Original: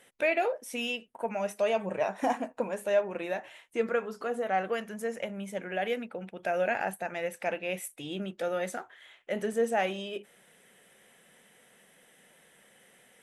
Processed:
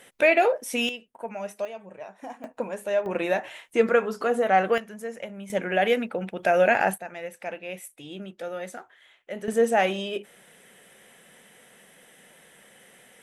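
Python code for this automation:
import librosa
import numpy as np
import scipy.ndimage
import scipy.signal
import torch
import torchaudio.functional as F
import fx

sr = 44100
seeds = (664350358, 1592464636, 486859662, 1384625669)

y = fx.gain(x, sr, db=fx.steps((0.0, 8.0), (0.89, -2.0), (1.65, -11.0), (2.44, 1.0), (3.06, 8.5), (4.78, -1.0), (5.5, 9.0), (6.98, -2.5), (9.48, 6.5)))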